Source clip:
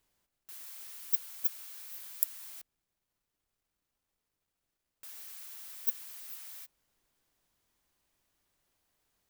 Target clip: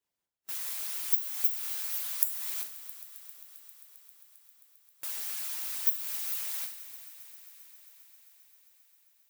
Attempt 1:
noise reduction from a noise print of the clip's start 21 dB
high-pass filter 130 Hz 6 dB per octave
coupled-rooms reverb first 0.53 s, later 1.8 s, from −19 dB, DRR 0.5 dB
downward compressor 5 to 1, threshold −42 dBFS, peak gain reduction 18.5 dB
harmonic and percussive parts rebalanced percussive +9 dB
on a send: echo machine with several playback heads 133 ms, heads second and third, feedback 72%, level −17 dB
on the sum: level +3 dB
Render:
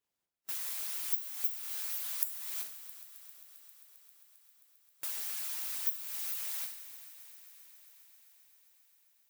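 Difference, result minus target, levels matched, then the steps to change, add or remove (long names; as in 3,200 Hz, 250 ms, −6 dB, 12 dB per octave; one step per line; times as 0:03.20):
downward compressor: peak gain reduction +6 dB
change: downward compressor 5 to 1, threshold −34.5 dBFS, peak gain reduction 12.5 dB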